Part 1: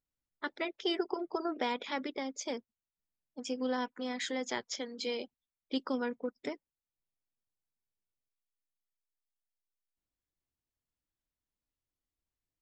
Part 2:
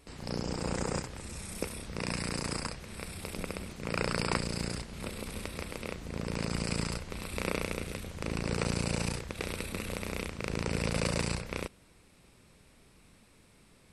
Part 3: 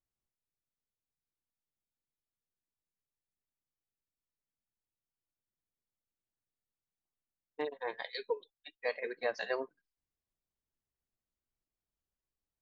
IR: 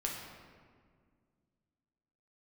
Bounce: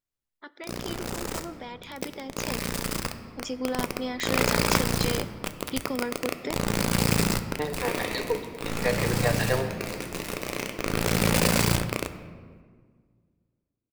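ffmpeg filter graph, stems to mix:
-filter_complex "[0:a]alimiter=level_in=3.5dB:limit=-24dB:level=0:latency=1:release=168,volume=-3.5dB,volume=-3dB,asplit=2[a][b];[b]volume=-16dB[c];[1:a]lowshelf=f=68:g=4.5,acrusher=bits=4:mix=0:aa=0.000001,adelay=400,volume=-4.5dB,asplit=2[d][e];[e]volume=-6dB[f];[2:a]volume=-6.5dB,asplit=3[g][h][i];[h]volume=-4dB[j];[i]apad=whole_len=631726[k];[d][k]sidechaincompress=threshold=-58dB:ratio=8:attack=16:release=1090[l];[3:a]atrim=start_sample=2205[m];[c][f][j]amix=inputs=3:normalize=0[n];[n][m]afir=irnorm=-1:irlink=0[o];[a][l][g][o]amix=inputs=4:normalize=0,bandreject=f=50:t=h:w=6,bandreject=f=100:t=h:w=6,bandreject=f=150:t=h:w=6,dynaudnorm=f=530:g=11:m=11.5dB"

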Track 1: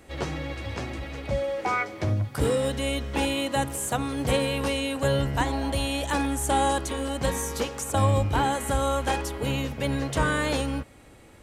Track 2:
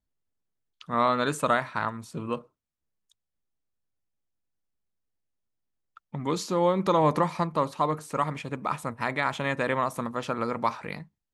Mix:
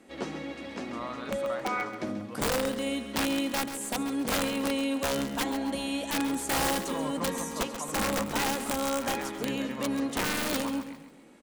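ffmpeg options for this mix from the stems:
-filter_complex "[0:a]lowpass=12k,lowshelf=f=150:t=q:w=3:g=-12.5,aeval=exprs='(mod(6.31*val(0)+1,2)-1)/6.31':c=same,volume=-5.5dB,asplit=2[a][b];[b]volume=-11dB[c];[1:a]volume=-15dB,asplit=2[d][e];[e]volume=-9.5dB[f];[c][f]amix=inputs=2:normalize=0,aecho=0:1:135|270|405|540|675:1|0.38|0.144|0.0549|0.0209[g];[a][d][g]amix=inputs=3:normalize=0"

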